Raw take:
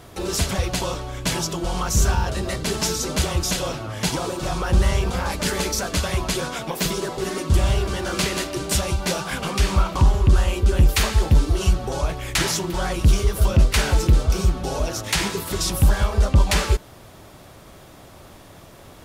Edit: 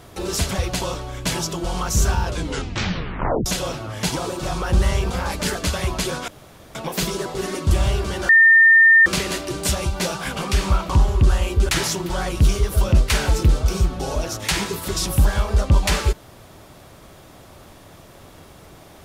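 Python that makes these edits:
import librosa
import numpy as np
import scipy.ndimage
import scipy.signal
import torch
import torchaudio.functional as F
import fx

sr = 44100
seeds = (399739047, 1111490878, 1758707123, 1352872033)

y = fx.edit(x, sr, fx.tape_stop(start_s=2.23, length_s=1.23),
    fx.cut(start_s=5.55, length_s=0.3),
    fx.insert_room_tone(at_s=6.58, length_s=0.47),
    fx.insert_tone(at_s=8.12, length_s=0.77, hz=1810.0, db=-8.0),
    fx.cut(start_s=10.75, length_s=1.58), tone=tone)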